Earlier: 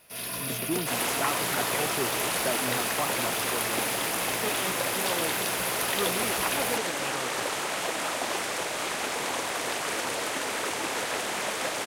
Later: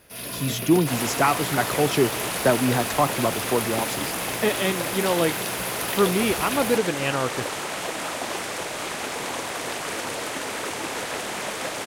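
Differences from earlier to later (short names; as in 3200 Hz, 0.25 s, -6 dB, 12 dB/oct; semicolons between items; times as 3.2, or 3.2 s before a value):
speech +10.5 dB; master: add low shelf 250 Hz +6 dB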